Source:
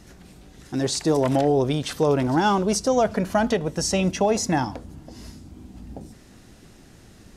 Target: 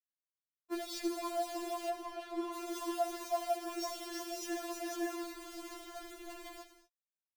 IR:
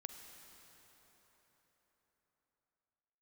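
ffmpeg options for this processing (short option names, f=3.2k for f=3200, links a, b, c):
-filter_complex "[0:a]agate=range=-13dB:threshold=-43dB:ratio=16:detection=peak,aemphasis=mode=reproduction:type=75fm,aecho=1:1:329|500:0.501|0.631,alimiter=limit=-11.5dB:level=0:latency=1:release=38,acompressor=threshold=-29dB:ratio=10,bandreject=f=50:t=h:w=6,bandreject=f=100:t=h:w=6,bandreject=f=150:t=h:w=6,bandreject=f=200:t=h:w=6,bandreject=f=250:t=h:w=6,bandreject=f=300:t=h:w=6,bandreject=f=350:t=h:w=6,acrusher=bits=6:mix=0:aa=0.000001,asettb=1/sr,asplit=3[a][b][c];[a]atrim=end=1.894[d];[b]atrim=start=1.89:end=2.54,asetpts=PTS-STARTPTS,afade=t=in:d=0.004:c=qsin,afade=t=out:st=0.646:d=0.004:c=qsin,lowpass=f=1.8k:p=1[e];[c]atrim=start=2.536[f];[d][e]acrossfade=d=0.004:c1=hsin:c2=qsin[g];[g][f]acrossfade=d=0.004:c1=qsin:c2=hsin[h];[1:a]atrim=start_sample=2205,afade=t=out:st=0.29:d=0.01,atrim=end_sample=13230[i];[h][i]afir=irnorm=-1:irlink=0,afftfilt=real='re*4*eq(mod(b,16),0)':imag='im*4*eq(mod(b,16),0)':win_size=2048:overlap=0.75,volume=4dB"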